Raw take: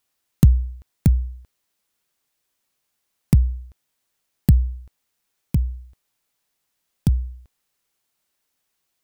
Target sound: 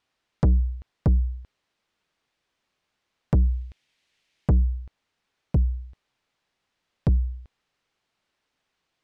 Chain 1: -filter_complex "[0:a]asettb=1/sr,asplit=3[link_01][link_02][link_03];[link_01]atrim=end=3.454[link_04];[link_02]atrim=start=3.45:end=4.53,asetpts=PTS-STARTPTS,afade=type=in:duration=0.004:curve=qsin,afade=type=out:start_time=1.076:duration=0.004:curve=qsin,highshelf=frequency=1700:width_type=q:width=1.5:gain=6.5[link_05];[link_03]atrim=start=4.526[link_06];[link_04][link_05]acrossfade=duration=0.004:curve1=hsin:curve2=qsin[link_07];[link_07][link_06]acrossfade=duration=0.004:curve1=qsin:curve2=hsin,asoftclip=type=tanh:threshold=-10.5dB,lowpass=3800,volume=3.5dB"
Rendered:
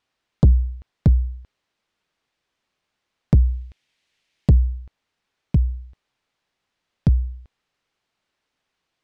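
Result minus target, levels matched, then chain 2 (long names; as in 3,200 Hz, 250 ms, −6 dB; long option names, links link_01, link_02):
soft clipping: distortion −7 dB
-filter_complex "[0:a]asettb=1/sr,asplit=3[link_01][link_02][link_03];[link_01]atrim=end=3.454[link_04];[link_02]atrim=start=3.45:end=4.53,asetpts=PTS-STARTPTS,afade=type=in:duration=0.004:curve=qsin,afade=type=out:start_time=1.076:duration=0.004:curve=qsin,highshelf=frequency=1700:width_type=q:width=1.5:gain=6.5[link_05];[link_03]atrim=start=4.526[link_06];[link_04][link_05]acrossfade=duration=0.004:curve1=hsin:curve2=qsin[link_07];[link_07][link_06]acrossfade=duration=0.004:curve1=qsin:curve2=hsin,asoftclip=type=tanh:threshold=-18.5dB,lowpass=3800,volume=3.5dB"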